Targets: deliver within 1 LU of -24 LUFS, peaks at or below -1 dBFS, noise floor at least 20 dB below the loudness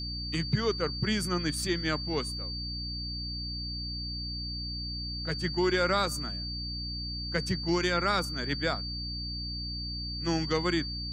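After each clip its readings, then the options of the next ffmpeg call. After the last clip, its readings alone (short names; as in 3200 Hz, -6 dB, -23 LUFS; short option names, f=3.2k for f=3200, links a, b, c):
hum 60 Hz; harmonics up to 300 Hz; hum level -36 dBFS; steady tone 4600 Hz; tone level -36 dBFS; loudness -31.0 LUFS; peak -13.5 dBFS; loudness target -24.0 LUFS
-> -af "bandreject=f=60:t=h:w=6,bandreject=f=120:t=h:w=6,bandreject=f=180:t=h:w=6,bandreject=f=240:t=h:w=6,bandreject=f=300:t=h:w=6"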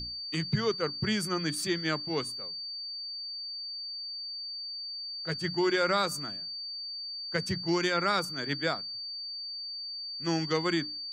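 hum none; steady tone 4600 Hz; tone level -36 dBFS
-> -af "bandreject=f=4.6k:w=30"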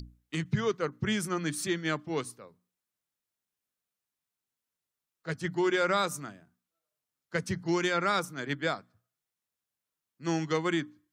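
steady tone none; loudness -31.0 LUFS; peak -15.0 dBFS; loudness target -24.0 LUFS
-> -af "volume=7dB"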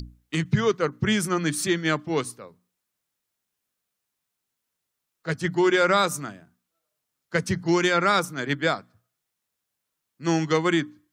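loudness -24.0 LUFS; peak -8.0 dBFS; noise floor -82 dBFS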